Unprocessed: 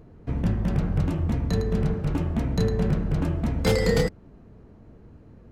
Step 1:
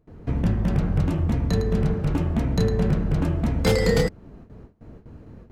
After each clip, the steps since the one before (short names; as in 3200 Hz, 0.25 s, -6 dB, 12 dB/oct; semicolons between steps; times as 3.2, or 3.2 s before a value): gate with hold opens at -40 dBFS; in parallel at -1 dB: compressor, threshold -31 dBFS, peak gain reduction 13.5 dB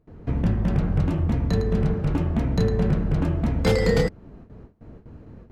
high shelf 6200 Hz -8 dB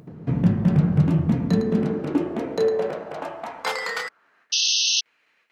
upward compressor, threshold -37 dBFS; high-pass sweep 150 Hz -> 2300 Hz, 1.18–4.83; painted sound noise, 4.52–5.01, 2600–6400 Hz -21 dBFS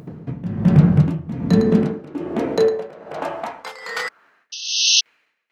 tremolo 1.2 Hz, depth 87%; gain +7 dB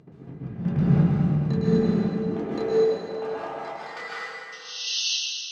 air absorption 79 m; resonator 400 Hz, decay 0.15 s, harmonics all, mix 70%; plate-style reverb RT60 2.2 s, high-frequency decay 0.9×, pre-delay 0.115 s, DRR -7.5 dB; gain -5 dB